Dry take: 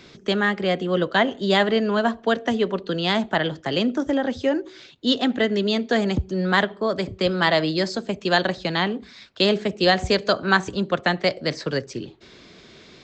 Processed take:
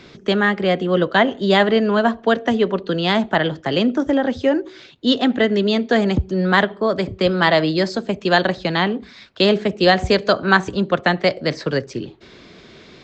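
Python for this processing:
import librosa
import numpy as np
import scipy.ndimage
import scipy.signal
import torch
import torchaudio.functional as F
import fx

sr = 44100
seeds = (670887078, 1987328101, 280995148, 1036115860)

y = fx.high_shelf(x, sr, hz=5200.0, db=-8.5)
y = y * 10.0 ** (4.5 / 20.0)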